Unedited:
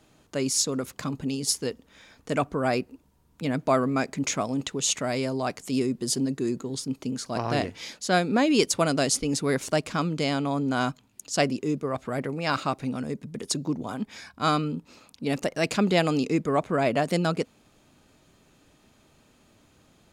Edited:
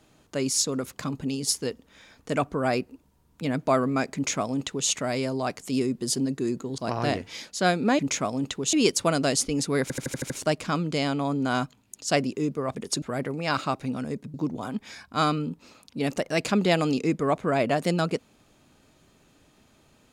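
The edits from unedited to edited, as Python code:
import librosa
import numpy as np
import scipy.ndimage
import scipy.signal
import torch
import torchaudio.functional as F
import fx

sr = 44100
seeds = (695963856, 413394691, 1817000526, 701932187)

y = fx.edit(x, sr, fx.duplicate(start_s=4.15, length_s=0.74, to_s=8.47),
    fx.cut(start_s=6.78, length_s=0.48),
    fx.stutter(start_s=9.56, slice_s=0.08, count=7),
    fx.move(start_s=13.33, length_s=0.27, to_s=12.01), tone=tone)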